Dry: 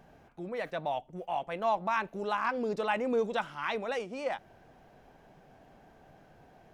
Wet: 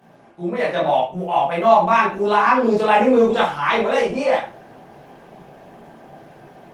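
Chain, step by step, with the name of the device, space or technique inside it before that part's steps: far-field microphone of a smart speaker (reverb RT60 0.35 s, pre-delay 14 ms, DRR -6.5 dB; HPF 130 Hz 24 dB/oct; AGC gain up to 6 dB; gain +3 dB; Opus 24 kbps 48000 Hz)

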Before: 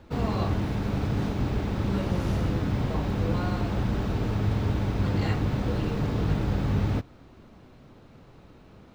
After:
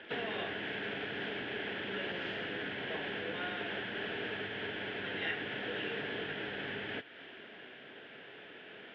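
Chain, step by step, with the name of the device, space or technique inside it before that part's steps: band shelf 2300 Hz +11.5 dB; thinning echo 85 ms, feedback 79%, high-pass 750 Hz, level -20.5 dB; hearing aid with frequency lowering (nonlinear frequency compression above 2900 Hz 1.5:1; compressor 3:1, threshold -35 dBFS, peak gain reduction 12 dB; speaker cabinet 290–5200 Hz, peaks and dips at 420 Hz +8 dB, 680 Hz +5 dB, 1200 Hz -7 dB, 1700 Hz +8 dB, 3100 Hz +7 dB); gain -2 dB

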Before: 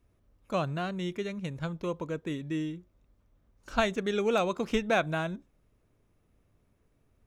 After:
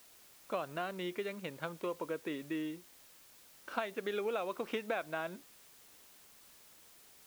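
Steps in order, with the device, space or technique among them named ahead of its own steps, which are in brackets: baby monitor (BPF 360–3200 Hz; compressor, threshold -34 dBFS, peak gain reduction 12 dB; white noise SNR 19 dB); gain +1 dB

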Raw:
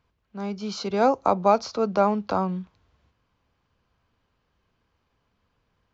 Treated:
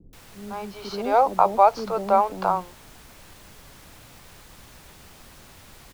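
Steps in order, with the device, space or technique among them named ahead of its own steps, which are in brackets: horn gramophone (BPF 280–4000 Hz; bell 870 Hz +6.5 dB; wow and flutter; pink noise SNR 22 dB); bands offset in time lows, highs 0.13 s, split 380 Hz

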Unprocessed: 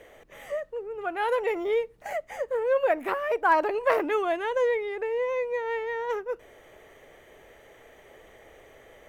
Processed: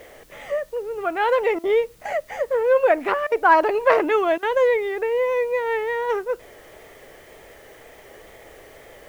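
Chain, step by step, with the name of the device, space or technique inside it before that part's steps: worn cassette (LPF 6100 Hz; wow and flutter; level dips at 1.59/3.27/4.38, 46 ms -19 dB; white noise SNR 34 dB); gain +6.5 dB

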